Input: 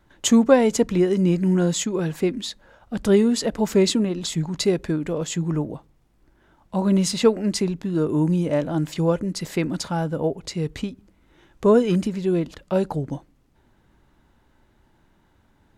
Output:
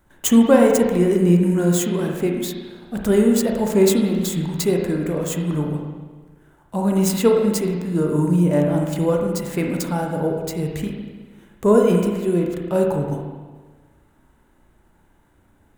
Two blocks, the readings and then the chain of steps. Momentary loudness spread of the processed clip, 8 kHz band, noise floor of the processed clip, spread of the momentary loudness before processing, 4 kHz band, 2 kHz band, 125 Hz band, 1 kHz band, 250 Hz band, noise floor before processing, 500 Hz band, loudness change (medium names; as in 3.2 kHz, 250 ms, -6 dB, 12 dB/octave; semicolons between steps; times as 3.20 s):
12 LU, +1.5 dB, -58 dBFS, 11 LU, -3.0 dB, +2.0 dB, +3.0 dB, +2.5 dB, +2.5 dB, -62 dBFS, +3.0 dB, +2.5 dB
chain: median filter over 5 samples; resonant high shelf 6.5 kHz +11 dB, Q 1.5; spring tank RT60 1.4 s, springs 34/52 ms, chirp 60 ms, DRR 0.5 dB